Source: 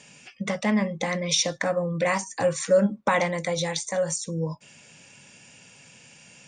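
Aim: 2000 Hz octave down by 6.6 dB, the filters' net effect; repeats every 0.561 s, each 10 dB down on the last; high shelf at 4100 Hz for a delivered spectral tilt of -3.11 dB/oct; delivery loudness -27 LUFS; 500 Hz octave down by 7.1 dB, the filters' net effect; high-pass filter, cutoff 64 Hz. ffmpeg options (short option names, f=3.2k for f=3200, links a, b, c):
-af "highpass=64,equalizer=f=500:t=o:g=-7.5,equalizer=f=2k:t=o:g=-8.5,highshelf=f=4.1k:g=6.5,aecho=1:1:561|1122|1683|2244:0.316|0.101|0.0324|0.0104,volume=-0.5dB"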